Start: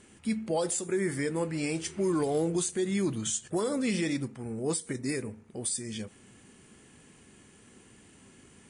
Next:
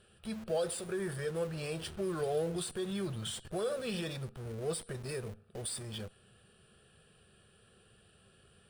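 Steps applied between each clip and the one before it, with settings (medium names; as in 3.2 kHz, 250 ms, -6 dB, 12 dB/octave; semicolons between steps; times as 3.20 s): static phaser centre 1.4 kHz, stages 8; in parallel at -9 dB: Schmitt trigger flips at -46 dBFS; on the sum: trim -2.5 dB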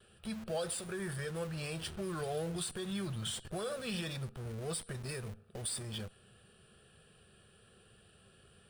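gate with hold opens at -56 dBFS; dynamic bell 430 Hz, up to -7 dB, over -48 dBFS, Q 1.1; trim +1 dB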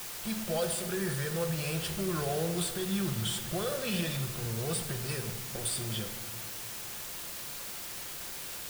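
in parallel at -5.5 dB: word length cut 6-bit, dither triangular; on the sum: simulated room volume 1500 m³, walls mixed, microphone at 0.84 m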